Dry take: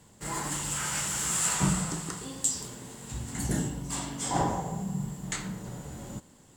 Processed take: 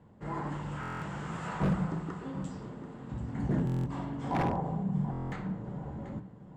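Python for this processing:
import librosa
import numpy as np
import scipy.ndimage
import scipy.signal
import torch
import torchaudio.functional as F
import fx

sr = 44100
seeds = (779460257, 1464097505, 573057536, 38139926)

y = scipy.signal.sosfilt(scipy.signal.bessel(2, 1100.0, 'lowpass', norm='mag', fs=sr, output='sos'), x)
y = fx.low_shelf(y, sr, hz=62.0, db=-10.5)
y = fx.hum_notches(y, sr, base_hz=60, count=7)
y = fx.echo_feedback(y, sr, ms=736, feedback_pct=36, wet_db=-14)
y = 10.0 ** (-24.5 / 20.0) * (np.abs((y / 10.0 ** (-24.5 / 20.0) + 3.0) % 4.0 - 2.0) - 1.0)
y = fx.low_shelf(y, sr, hz=270.0, db=5.0)
y = fx.buffer_glitch(y, sr, at_s=(0.81, 3.65, 5.11), block=1024, repeats=8)
y = fx.doppler_dist(y, sr, depth_ms=0.11)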